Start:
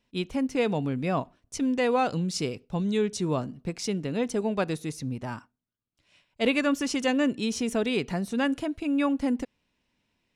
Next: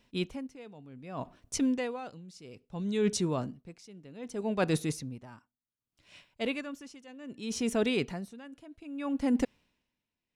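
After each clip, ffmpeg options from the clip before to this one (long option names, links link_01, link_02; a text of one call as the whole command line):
ffmpeg -i in.wav -af "areverse,acompressor=threshold=-32dB:ratio=6,areverse,aeval=exprs='val(0)*pow(10,-23*(0.5-0.5*cos(2*PI*0.64*n/s))/20)':channel_layout=same,volume=8dB" out.wav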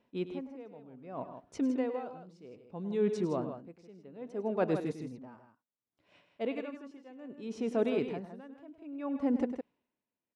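ffmpeg -i in.wav -filter_complex "[0:a]bandpass=frequency=510:width_type=q:width=0.67:csg=0,asplit=2[link_01][link_02];[link_02]aecho=0:1:102|160.3:0.251|0.355[link_03];[link_01][link_03]amix=inputs=2:normalize=0" out.wav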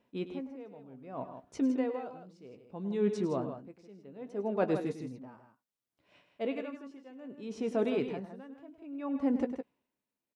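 ffmpeg -i in.wav -filter_complex "[0:a]asplit=2[link_01][link_02];[link_02]adelay=15,volume=-11dB[link_03];[link_01][link_03]amix=inputs=2:normalize=0" out.wav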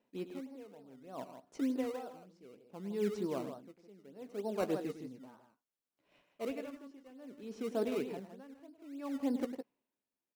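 ffmpeg -i in.wav -filter_complex "[0:a]highpass=180,asplit=2[link_01][link_02];[link_02]acrusher=samples=18:mix=1:aa=0.000001:lfo=1:lforange=18:lforate=3.3,volume=-7dB[link_03];[link_01][link_03]amix=inputs=2:normalize=0,volume=-7dB" out.wav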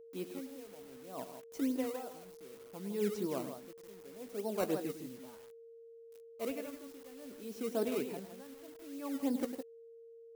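ffmpeg -i in.wav -af "acrusher=bits=9:mix=0:aa=0.000001,aeval=exprs='val(0)+0.00251*sin(2*PI*460*n/s)':channel_layout=same,highshelf=frequency=8000:gain=11.5" out.wav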